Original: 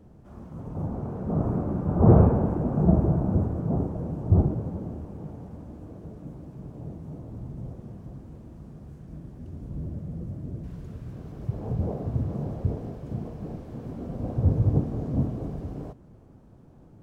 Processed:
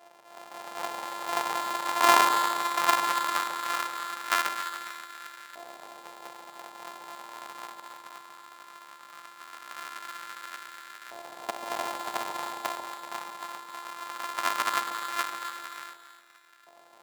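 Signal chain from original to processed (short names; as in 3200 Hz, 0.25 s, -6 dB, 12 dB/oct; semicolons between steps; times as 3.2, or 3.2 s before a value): sample sorter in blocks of 128 samples; LFO high-pass saw up 0.18 Hz 710–1500 Hz; on a send: echo with dull and thin repeats by turns 0.138 s, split 900 Hz, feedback 54%, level -6 dB; on the sum: gain -1.5 dB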